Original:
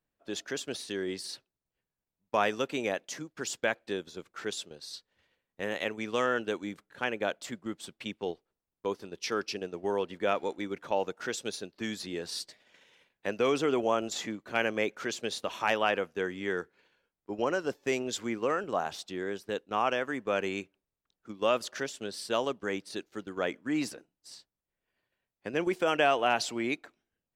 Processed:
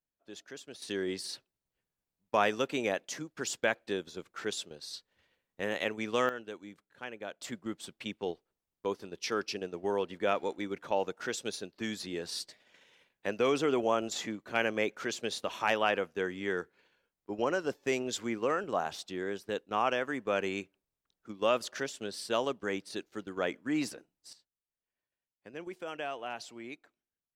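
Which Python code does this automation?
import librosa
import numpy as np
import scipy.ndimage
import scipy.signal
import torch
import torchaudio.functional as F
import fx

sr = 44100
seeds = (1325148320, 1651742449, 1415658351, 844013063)

y = fx.gain(x, sr, db=fx.steps((0.0, -11.0), (0.82, 0.0), (6.29, -10.5), (7.41, -1.0), (24.33, -13.0)))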